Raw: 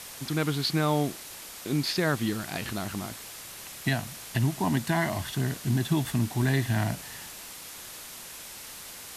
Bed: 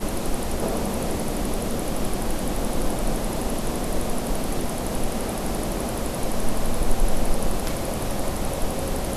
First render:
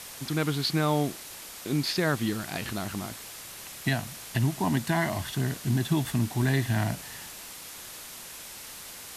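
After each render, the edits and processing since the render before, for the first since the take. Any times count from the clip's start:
no processing that can be heard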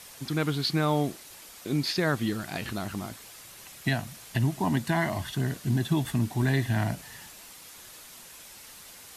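broadband denoise 6 dB, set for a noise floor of −43 dBFS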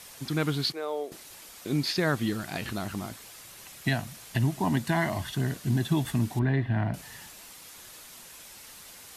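0:00.72–0:01.12: four-pole ladder high-pass 400 Hz, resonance 60%
0:06.39–0:06.94: high-frequency loss of the air 430 metres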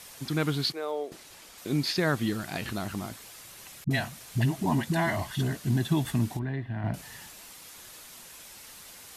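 0:00.91–0:01.58: high-shelf EQ 10,000 Hz −9.5 dB
0:03.84–0:05.56: all-pass dispersion highs, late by 66 ms, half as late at 490 Hz
0:06.37–0:06.84: clip gain −7 dB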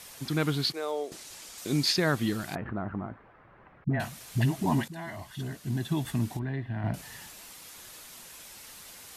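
0:00.74–0:01.96: parametric band 7,000 Hz +7 dB 1.6 octaves
0:02.55–0:04.00: low-pass filter 1,600 Hz 24 dB per octave
0:04.88–0:06.68: fade in, from −15.5 dB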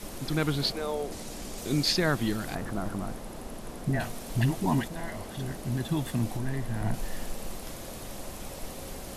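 mix in bed −14.5 dB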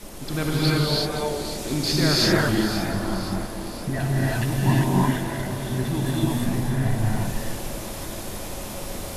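echo with a time of its own for lows and highs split 1,900 Hz, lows 245 ms, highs 518 ms, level −12 dB
reverb whose tail is shaped and stops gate 380 ms rising, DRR −6 dB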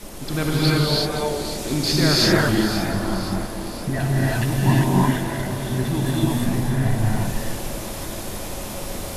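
level +2.5 dB

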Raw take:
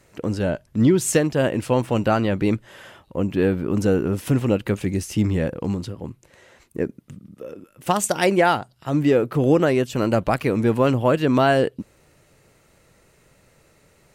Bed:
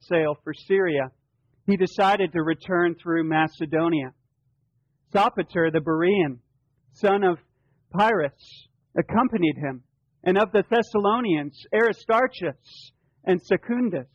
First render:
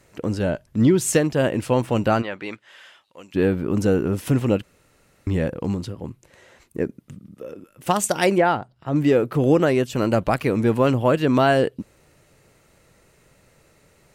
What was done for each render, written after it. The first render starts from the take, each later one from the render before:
0:02.21–0:03.34: resonant band-pass 1,500 Hz → 6,000 Hz, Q 0.69
0:04.63–0:05.27: fill with room tone
0:08.38–0:08.96: low-pass filter 1,600 Hz 6 dB per octave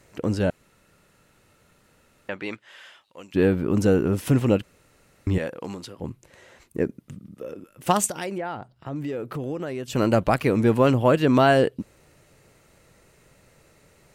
0:00.50–0:02.29: fill with room tone
0:05.38–0:06.00: high-pass filter 690 Hz 6 dB per octave
0:08.06–0:09.88: downward compressor 3 to 1, threshold −31 dBFS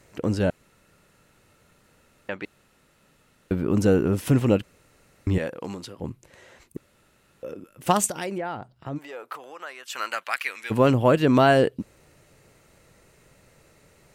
0:02.45–0:03.51: fill with room tone
0:06.77–0:07.43: fill with room tone
0:08.97–0:10.70: high-pass with resonance 740 Hz → 2,200 Hz, resonance Q 1.5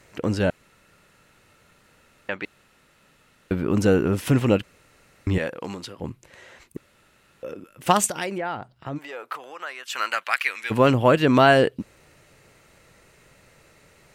parametric band 2,200 Hz +5 dB 2.7 octaves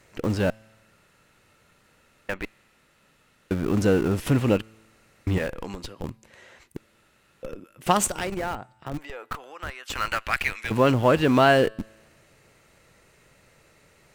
tuned comb filter 110 Hz, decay 1.3 s, harmonics all, mix 30%
in parallel at −7.5 dB: comparator with hysteresis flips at −28.5 dBFS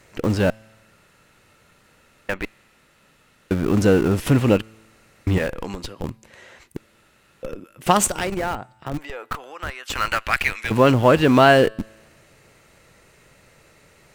level +4.5 dB
brickwall limiter −1 dBFS, peak gain reduction 1 dB

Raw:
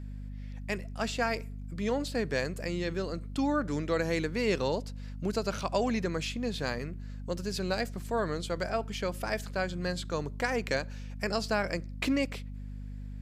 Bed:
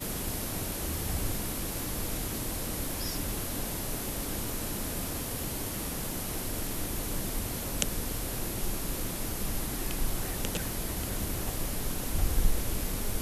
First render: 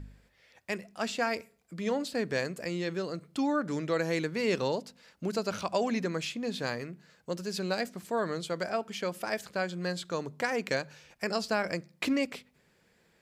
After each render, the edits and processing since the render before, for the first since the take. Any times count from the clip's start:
hum removal 50 Hz, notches 5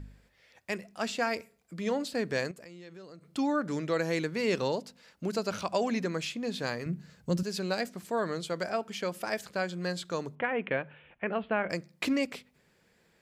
0:02.51–0:03.33: downward compressor 3 to 1, threshold −50 dBFS
0:06.86–0:07.43: bass and treble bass +15 dB, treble +3 dB
0:10.35–0:11.70: Butterworth low-pass 3,300 Hz 72 dB per octave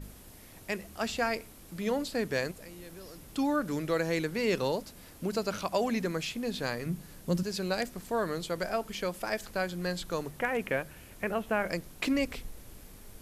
mix in bed −18 dB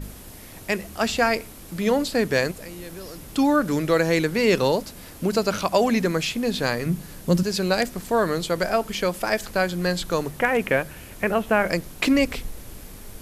level +9.5 dB

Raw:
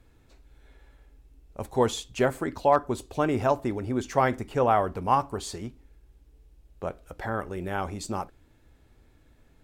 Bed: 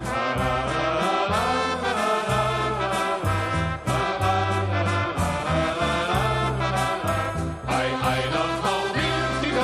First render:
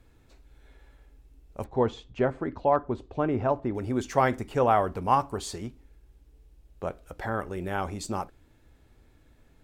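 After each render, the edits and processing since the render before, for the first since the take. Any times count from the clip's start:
0:01.64–0:03.75: head-to-tape spacing loss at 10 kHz 31 dB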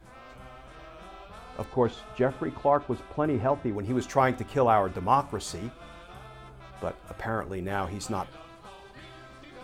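mix in bed −24 dB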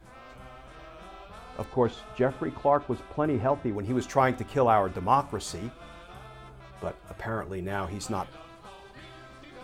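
0:06.61–0:07.90: notch comb filter 260 Hz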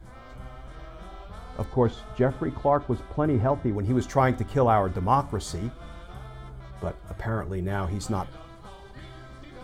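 low-shelf EQ 170 Hz +11 dB
notch filter 2,600 Hz, Q 6.9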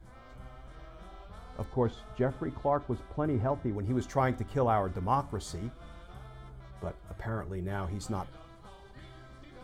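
level −6.5 dB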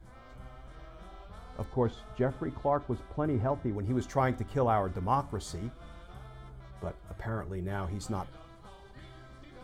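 no processing that can be heard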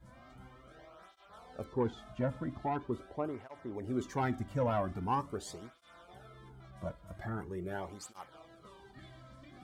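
soft clipping −20 dBFS, distortion −19 dB
through-zero flanger with one copy inverted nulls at 0.43 Hz, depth 2.7 ms

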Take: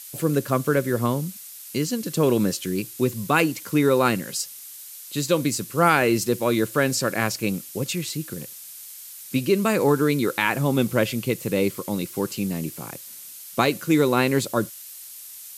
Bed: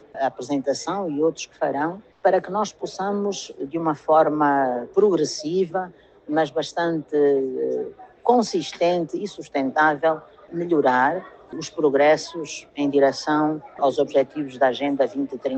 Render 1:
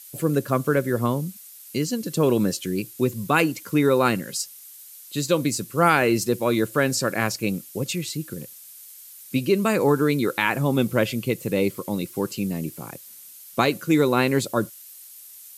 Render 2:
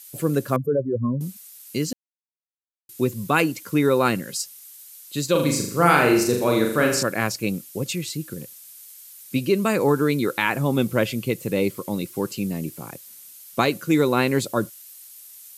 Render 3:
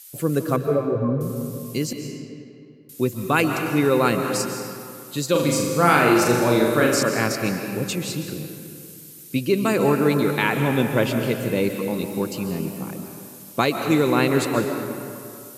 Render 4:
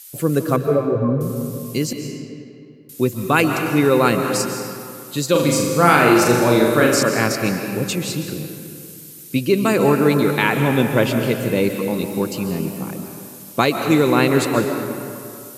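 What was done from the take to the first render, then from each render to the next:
broadband denoise 6 dB, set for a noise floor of −41 dBFS
0:00.56–0:01.21: expanding power law on the bin magnitudes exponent 3.2; 0:01.93–0:02.89: silence; 0:05.31–0:07.03: flutter between parallel walls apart 6.9 metres, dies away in 0.62 s
comb and all-pass reverb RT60 2.5 s, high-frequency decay 0.65×, pre-delay 100 ms, DRR 4.5 dB
level +3.5 dB; brickwall limiter −1 dBFS, peak gain reduction 1 dB

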